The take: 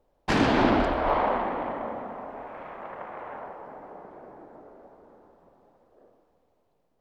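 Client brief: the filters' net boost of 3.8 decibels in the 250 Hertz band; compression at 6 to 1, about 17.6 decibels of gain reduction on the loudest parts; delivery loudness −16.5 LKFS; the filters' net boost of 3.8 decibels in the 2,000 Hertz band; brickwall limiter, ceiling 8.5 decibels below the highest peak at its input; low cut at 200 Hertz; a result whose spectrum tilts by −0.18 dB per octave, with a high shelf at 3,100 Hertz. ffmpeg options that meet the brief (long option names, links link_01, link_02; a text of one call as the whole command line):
ffmpeg -i in.wav -af "highpass=200,equalizer=frequency=250:width_type=o:gain=6,equalizer=frequency=2000:width_type=o:gain=7,highshelf=frequency=3100:gain=-7,acompressor=threshold=-34dB:ratio=6,volume=24.5dB,alimiter=limit=-6dB:level=0:latency=1" out.wav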